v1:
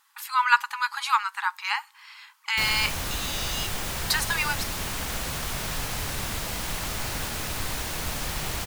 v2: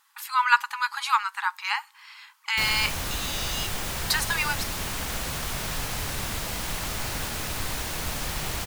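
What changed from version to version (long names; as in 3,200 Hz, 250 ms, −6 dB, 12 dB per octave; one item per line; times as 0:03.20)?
nothing changed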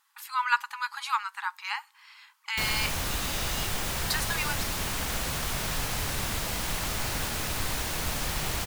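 speech −5.5 dB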